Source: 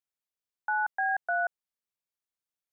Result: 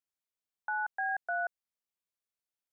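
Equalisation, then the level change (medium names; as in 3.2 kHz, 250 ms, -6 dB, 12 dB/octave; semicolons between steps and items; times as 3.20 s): dynamic bell 1 kHz, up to -3 dB, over -42 dBFS, Q 1.2; -3.0 dB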